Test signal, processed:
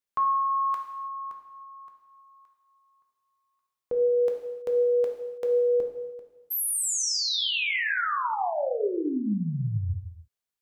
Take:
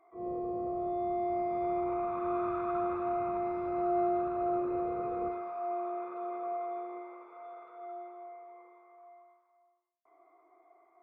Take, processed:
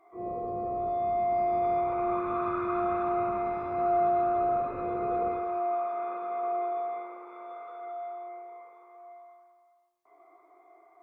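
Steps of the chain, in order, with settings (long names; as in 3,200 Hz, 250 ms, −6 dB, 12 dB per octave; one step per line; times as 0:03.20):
reverb whose tail is shaped and stops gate 350 ms falling, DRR 1.5 dB
level +3.5 dB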